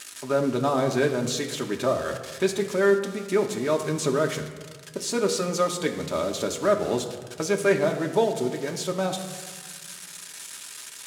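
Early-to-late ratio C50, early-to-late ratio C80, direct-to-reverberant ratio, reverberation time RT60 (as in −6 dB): 9.0 dB, 10.5 dB, 2.0 dB, 1.6 s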